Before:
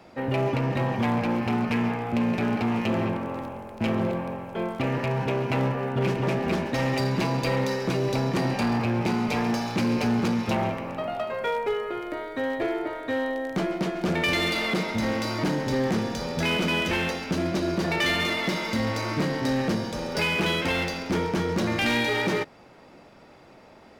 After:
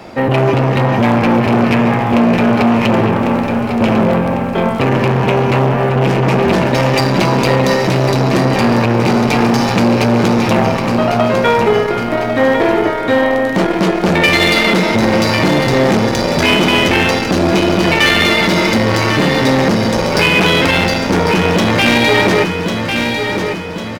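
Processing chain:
flanger 0.12 Hz, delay 9 ms, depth 1.1 ms, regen −65%
on a send: repeating echo 1,099 ms, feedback 46%, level −9 dB
on the sum: boost into a limiter +21 dB
saturating transformer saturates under 450 Hz

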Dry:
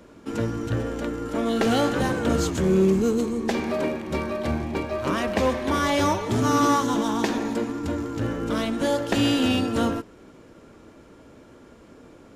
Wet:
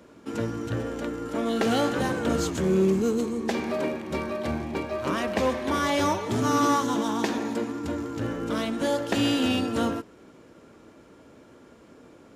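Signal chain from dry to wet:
high-pass filter 100 Hz 6 dB per octave
level −2 dB

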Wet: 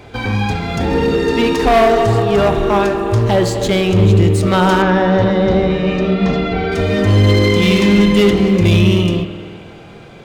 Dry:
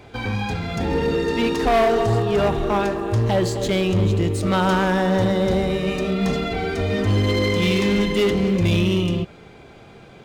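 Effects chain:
0:04.82–0:06.72: Gaussian smoothing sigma 1.7 samples
spring reverb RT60 2.2 s, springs 49 ms, chirp 45 ms, DRR 9 dB
level +6 dB

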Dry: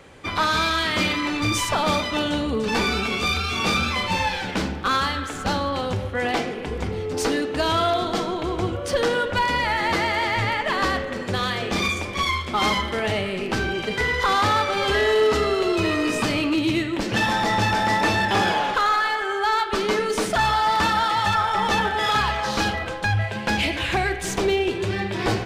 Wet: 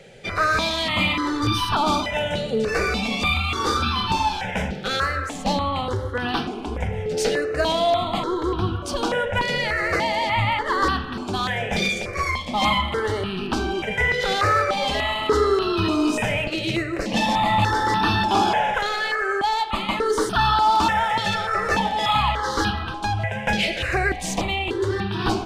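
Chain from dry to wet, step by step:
high-shelf EQ 8,700 Hz −8.5 dB
step-sequenced phaser 3.4 Hz 290–2,100 Hz
level +4 dB

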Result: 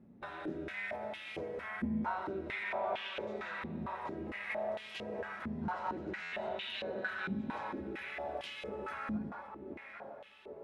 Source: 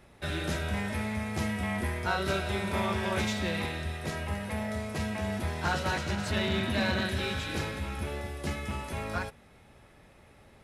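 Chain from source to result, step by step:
downward compressor, threshold −35 dBFS, peak gain reduction 10.5 dB
0:01.35–0:02.03: double-tracking delay 12 ms −4.5 dB
0:02.63–0:03.21: mid-hump overdrive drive 17 dB, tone 1,300 Hz, clips at −27 dBFS
on a send: tape delay 799 ms, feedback 69%, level −5 dB, low-pass 1,500 Hz
on the sum: reverb whose tail is shaped and stops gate 210 ms rising, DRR 6.5 dB
buffer that repeats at 0:06.22, times 8
band-pass on a step sequencer 4.4 Hz 220–3,000 Hz
level +8.5 dB

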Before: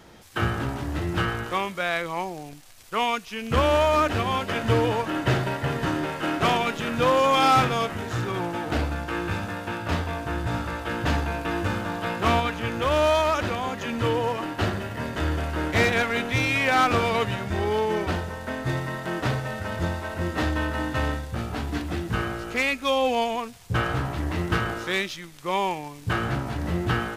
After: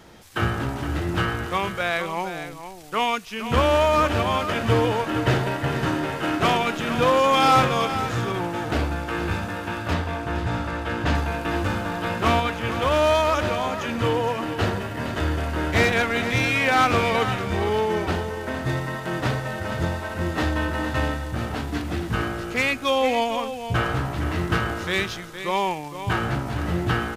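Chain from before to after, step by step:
0:09.93–0:11.15: high-shelf EQ 10,000 Hz −11 dB
single-tap delay 464 ms −10.5 dB
level +1.5 dB

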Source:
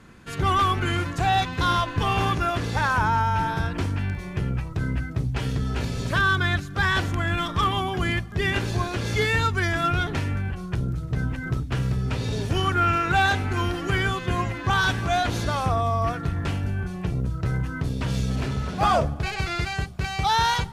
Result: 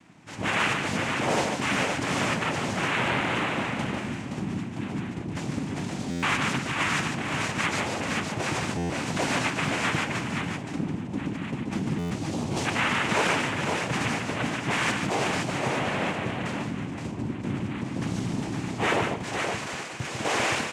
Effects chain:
0:19.22–0:19.98: Bessel high-pass filter 270 Hz
cochlear-implant simulation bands 4
on a send: multi-tap delay 147/520 ms −5.5/−5 dB
on the sum: buffer that repeats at 0:06.10/0:08.77/0:11.98, samples 512, times 10
highs frequency-modulated by the lows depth 0.37 ms
level −4.5 dB

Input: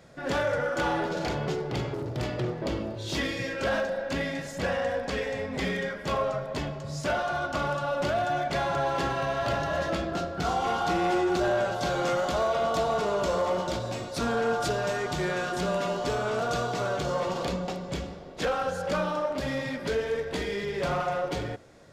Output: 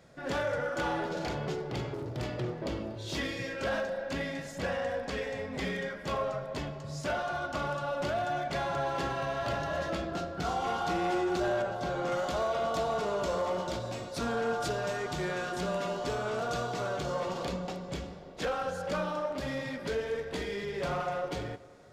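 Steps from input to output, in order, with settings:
0:11.62–0:12.12: high-shelf EQ 2,700 Hz −9 dB
tape delay 237 ms, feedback 70%, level −20.5 dB, low-pass 2,100 Hz
level −4.5 dB

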